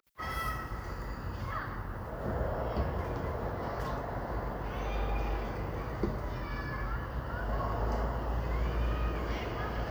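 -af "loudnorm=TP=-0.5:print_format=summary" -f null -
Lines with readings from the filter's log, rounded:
Input Integrated:    -35.8 LUFS
Input True Peak:     -18.8 dBTP
Input LRA:             1.8 LU
Input Threshold:     -45.8 LUFS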